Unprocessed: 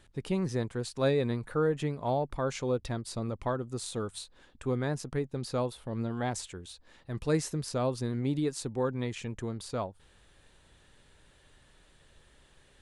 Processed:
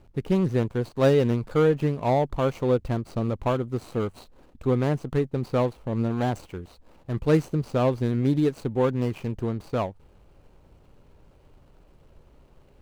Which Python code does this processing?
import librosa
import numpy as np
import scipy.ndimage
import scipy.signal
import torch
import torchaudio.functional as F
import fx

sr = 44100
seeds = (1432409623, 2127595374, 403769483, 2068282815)

y = scipy.signal.medfilt(x, 25)
y = y * 10.0 ** (8.0 / 20.0)